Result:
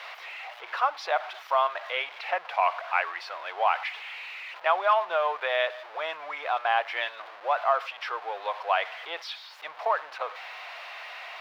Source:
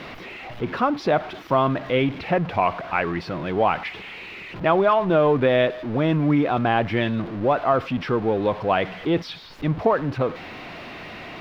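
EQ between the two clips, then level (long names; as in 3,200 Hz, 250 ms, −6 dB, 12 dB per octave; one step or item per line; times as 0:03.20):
inverse Chebyshev high-pass filter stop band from 270 Hz, stop band 50 dB
−1.5 dB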